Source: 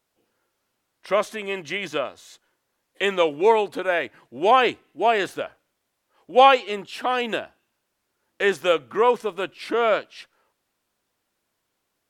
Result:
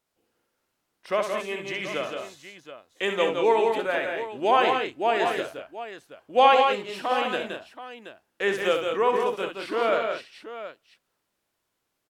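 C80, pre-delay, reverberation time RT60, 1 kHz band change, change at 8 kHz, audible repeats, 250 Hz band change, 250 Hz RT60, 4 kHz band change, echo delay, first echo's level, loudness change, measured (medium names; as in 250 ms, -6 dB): no reverb, no reverb, no reverb, -2.0 dB, no reading, 4, -2.5 dB, no reverb, -2.5 dB, 64 ms, -7.5 dB, -2.5 dB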